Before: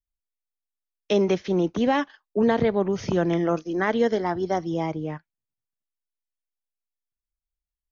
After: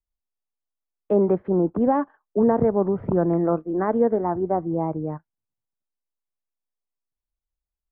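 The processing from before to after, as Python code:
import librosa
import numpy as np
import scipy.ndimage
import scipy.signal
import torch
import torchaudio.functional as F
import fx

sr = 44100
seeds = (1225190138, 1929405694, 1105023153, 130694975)

y = scipy.signal.sosfilt(scipy.signal.butter(4, 1200.0, 'lowpass', fs=sr, output='sos'), x)
y = y * librosa.db_to_amplitude(2.0)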